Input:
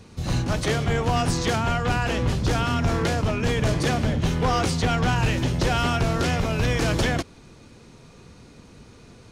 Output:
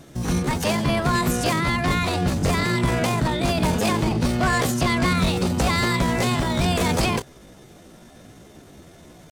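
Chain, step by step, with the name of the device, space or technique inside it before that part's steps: chipmunk voice (pitch shift +6.5 st); trim +1.5 dB

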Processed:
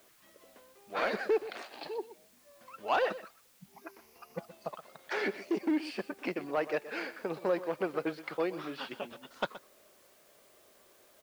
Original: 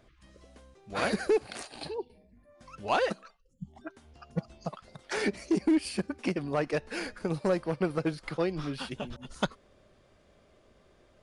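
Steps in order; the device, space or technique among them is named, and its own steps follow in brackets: tape answering machine (band-pass 370–3400 Hz; saturation -18 dBFS, distortion -23 dB; wow and flutter; white noise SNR 28 dB); 3.73–4.38 s: rippled EQ curve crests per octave 0.83, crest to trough 9 dB; delay 123 ms -15 dB

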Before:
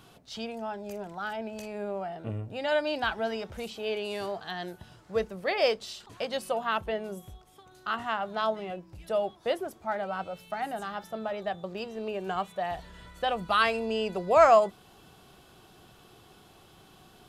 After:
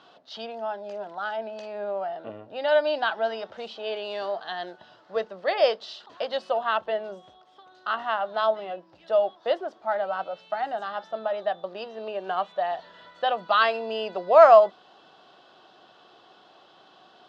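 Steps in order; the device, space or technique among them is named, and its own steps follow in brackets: phone earpiece (cabinet simulation 400–4500 Hz, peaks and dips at 410 Hz -4 dB, 620 Hz +4 dB, 2.3 kHz -9 dB); trim +4 dB

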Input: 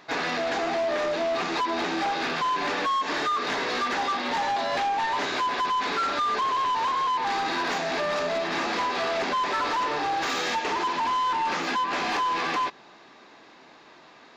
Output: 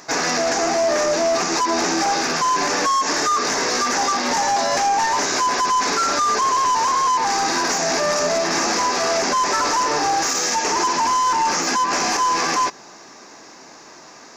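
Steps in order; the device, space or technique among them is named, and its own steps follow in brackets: over-bright horn tweeter (resonant high shelf 4.6 kHz +9 dB, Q 3; peak limiter -20 dBFS, peak gain reduction 8.5 dB); trim +8 dB

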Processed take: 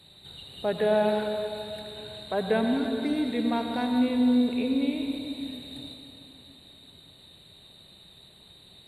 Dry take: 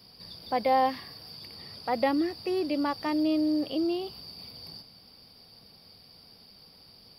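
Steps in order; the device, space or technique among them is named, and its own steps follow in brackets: slowed and reverbed (tape speed -19%; reverberation RT60 3.1 s, pre-delay 76 ms, DRR 3.5 dB)

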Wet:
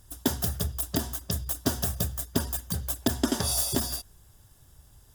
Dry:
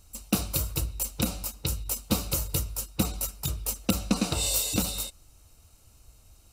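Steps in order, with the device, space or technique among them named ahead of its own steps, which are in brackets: nightcore (tape speed +27%)

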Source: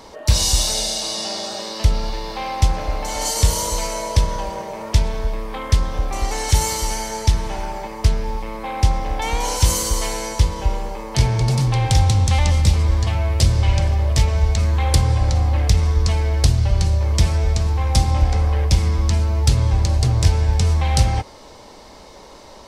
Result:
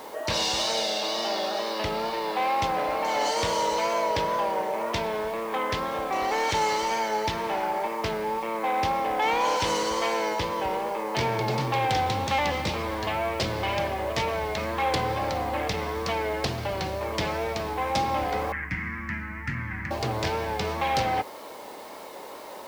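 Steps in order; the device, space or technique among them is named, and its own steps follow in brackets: tape answering machine (band-pass 320–2900 Hz; saturation -19.5 dBFS, distortion -21 dB; wow and flutter; white noise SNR 25 dB); 18.52–19.91 s: FFT filter 260 Hz 0 dB, 450 Hz -26 dB, 660 Hz -24 dB, 1.9 kHz +10 dB, 3.6 kHz -23 dB, 6 kHz -16 dB; trim +3 dB

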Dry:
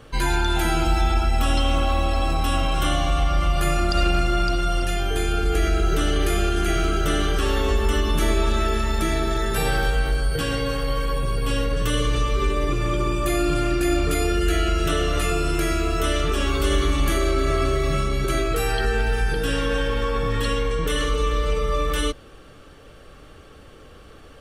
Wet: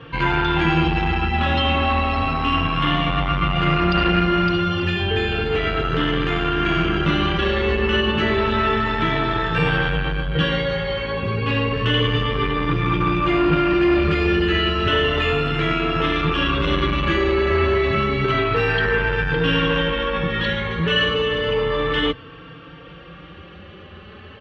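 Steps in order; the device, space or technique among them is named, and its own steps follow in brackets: barber-pole flanger into a guitar amplifier (endless flanger 3.9 ms +0.31 Hz; saturation -19.5 dBFS, distortion -15 dB; cabinet simulation 83–3600 Hz, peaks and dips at 92 Hz +6 dB, 170 Hz +8 dB, 660 Hz -5 dB, 1 kHz +4 dB, 1.8 kHz +4 dB, 2.8 kHz +6 dB); trim +8.5 dB

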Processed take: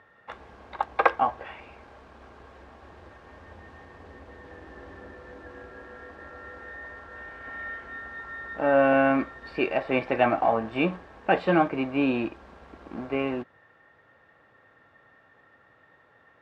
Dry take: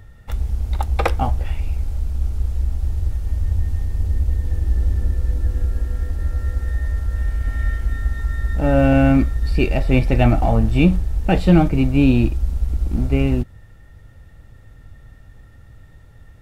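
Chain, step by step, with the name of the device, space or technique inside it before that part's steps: tin-can telephone (band-pass 460–2300 Hz; small resonant body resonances 1.1/1.6 kHz, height 10 dB, ringing for 35 ms)

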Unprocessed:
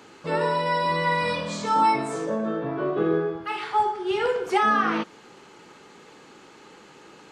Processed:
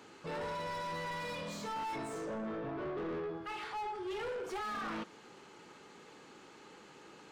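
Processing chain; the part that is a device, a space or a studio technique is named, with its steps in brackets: saturation between pre-emphasis and de-emphasis (treble shelf 3.3 kHz +12 dB; saturation -29.5 dBFS, distortion -5 dB; treble shelf 3.3 kHz -12 dB); trim -6.5 dB

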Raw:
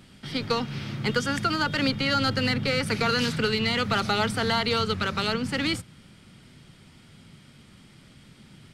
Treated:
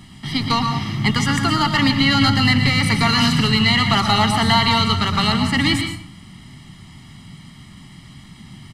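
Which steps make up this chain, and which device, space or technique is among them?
microphone above a desk (comb 1 ms, depth 88%; reverberation RT60 0.55 s, pre-delay 110 ms, DRR 5 dB); trim +5.5 dB

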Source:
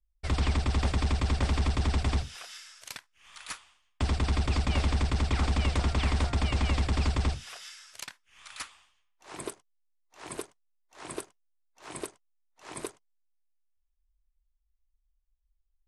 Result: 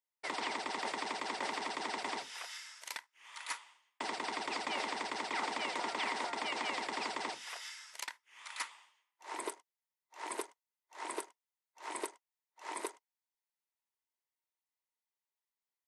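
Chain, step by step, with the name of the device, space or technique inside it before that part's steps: laptop speaker (high-pass 310 Hz 24 dB/octave; peaking EQ 930 Hz +11 dB 0.26 oct; peaking EQ 2 kHz +8 dB 0.22 oct; peak limiter -23.5 dBFS, peak gain reduction 7.5 dB); trim -2 dB

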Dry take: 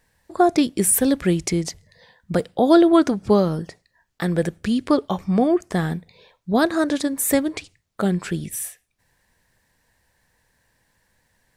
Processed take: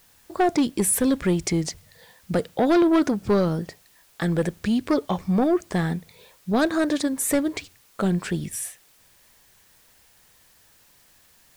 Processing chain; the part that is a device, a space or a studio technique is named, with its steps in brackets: compact cassette (saturation -13.5 dBFS, distortion -12 dB; low-pass 11 kHz; wow and flutter; white noise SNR 33 dB)

